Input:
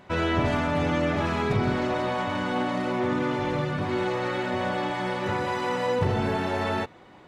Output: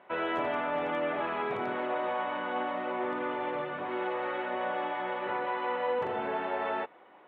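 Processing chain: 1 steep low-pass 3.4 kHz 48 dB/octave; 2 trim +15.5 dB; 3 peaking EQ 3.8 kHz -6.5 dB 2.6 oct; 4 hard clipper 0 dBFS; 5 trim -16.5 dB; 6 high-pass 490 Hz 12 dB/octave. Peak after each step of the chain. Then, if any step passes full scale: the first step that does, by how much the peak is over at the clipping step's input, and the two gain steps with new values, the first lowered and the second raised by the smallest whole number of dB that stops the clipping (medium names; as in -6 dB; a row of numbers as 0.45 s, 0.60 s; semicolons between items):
-12.0 dBFS, +3.5 dBFS, +3.0 dBFS, 0.0 dBFS, -16.5 dBFS, -19.5 dBFS; step 2, 3.0 dB; step 2 +12.5 dB, step 5 -13.5 dB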